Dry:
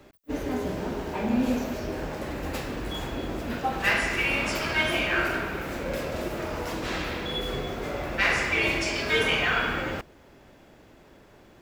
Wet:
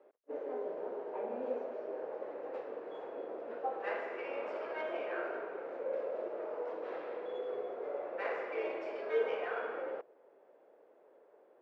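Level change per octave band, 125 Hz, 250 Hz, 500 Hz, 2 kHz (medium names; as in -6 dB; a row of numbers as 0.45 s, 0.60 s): under -35 dB, -19.0 dB, -4.5 dB, -19.5 dB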